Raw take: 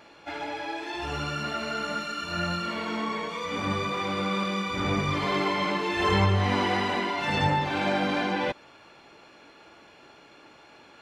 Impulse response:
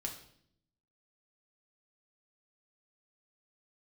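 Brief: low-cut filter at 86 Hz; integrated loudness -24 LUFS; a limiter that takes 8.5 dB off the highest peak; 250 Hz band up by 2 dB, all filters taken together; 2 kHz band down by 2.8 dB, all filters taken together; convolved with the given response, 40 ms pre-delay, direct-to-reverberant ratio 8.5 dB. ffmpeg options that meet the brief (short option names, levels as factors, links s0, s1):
-filter_complex "[0:a]highpass=86,equalizer=f=250:t=o:g=3,equalizer=f=2000:t=o:g=-3.5,alimiter=limit=0.106:level=0:latency=1,asplit=2[s0][s1];[1:a]atrim=start_sample=2205,adelay=40[s2];[s1][s2]afir=irnorm=-1:irlink=0,volume=0.398[s3];[s0][s3]amix=inputs=2:normalize=0,volume=1.78"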